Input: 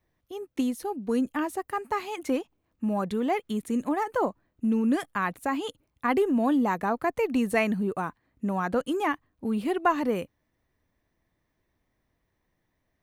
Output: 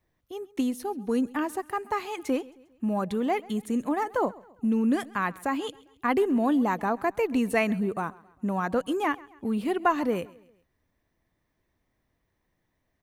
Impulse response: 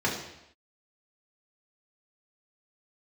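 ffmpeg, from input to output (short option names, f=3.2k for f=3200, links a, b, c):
-af "aecho=1:1:134|268|402:0.0794|0.0357|0.0161"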